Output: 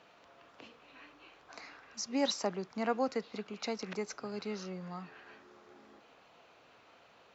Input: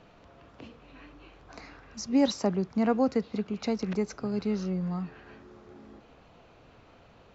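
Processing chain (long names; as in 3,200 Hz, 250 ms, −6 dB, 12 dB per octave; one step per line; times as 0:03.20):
high-pass filter 850 Hz 6 dB per octave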